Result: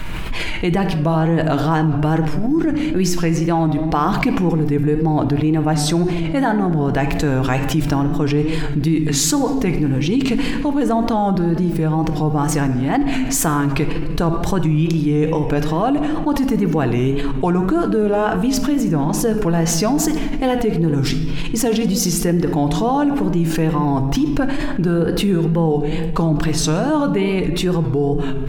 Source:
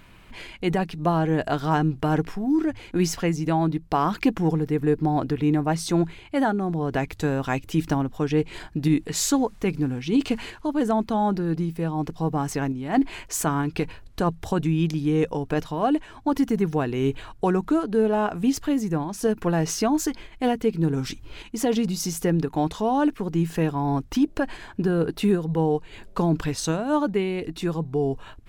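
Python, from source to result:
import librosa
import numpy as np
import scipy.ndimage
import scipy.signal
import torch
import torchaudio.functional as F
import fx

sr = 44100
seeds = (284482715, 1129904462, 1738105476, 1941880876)

y = fx.low_shelf(x, sr, hz=63.0, db=9.0)
y = fx.room_shoebox(y, sr, seeds[0], volume_m3=1000.0, walls='mixed', distance_m=0.6)
y = fx.wow_flutter(y, sr, seeds[1], rate_hz=2.1, depth_cents=77.0)
y = fx.env_flatten(y, sr, amount_pct=70)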